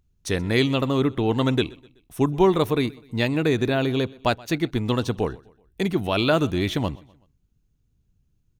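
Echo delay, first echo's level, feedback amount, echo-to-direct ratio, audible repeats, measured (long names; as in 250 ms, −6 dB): 126 ms, −23.0 dB, 44%, −22.0 dB, 2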